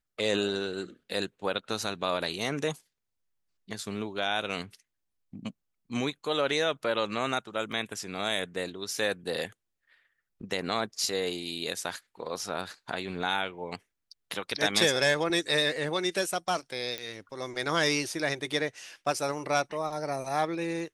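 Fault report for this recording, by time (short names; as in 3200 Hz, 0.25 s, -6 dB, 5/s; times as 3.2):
7.72 gap 4 ms
16.98 pop -18 dBFS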